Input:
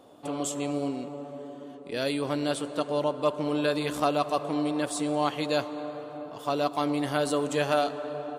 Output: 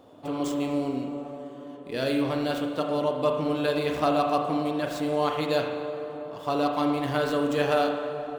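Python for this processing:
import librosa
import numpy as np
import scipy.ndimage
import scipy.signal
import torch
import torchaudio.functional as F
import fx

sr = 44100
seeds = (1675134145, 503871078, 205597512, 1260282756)

y = scipy.ndimage.median_filter(x, 5, mode='constant')
y = fx.low_shelf(y, sr, hz=130.0, db=6.5)
y = fx.rev_spring(y, sr, rt60_s=1.1, pass_ms=(38,), chirp_ms=50, drr_db=3.0)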